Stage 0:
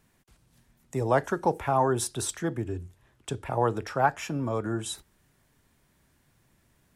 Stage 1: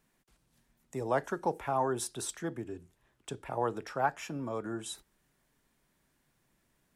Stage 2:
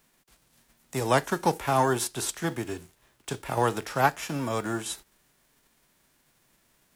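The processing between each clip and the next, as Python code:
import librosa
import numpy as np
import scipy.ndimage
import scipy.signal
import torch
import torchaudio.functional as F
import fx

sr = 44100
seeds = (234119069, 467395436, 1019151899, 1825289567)

y1 = fx.peak_eq(x, sr, hz=88.0, db=-12.0, octaves=0.84)
y1 = y1 * librosa.db_to_amplitude(-6.0)
y2 = fx.envelope_flatten(y1, sr, power=0.6)
y2 = y2 * librosa.db_to_amplitude(7.0)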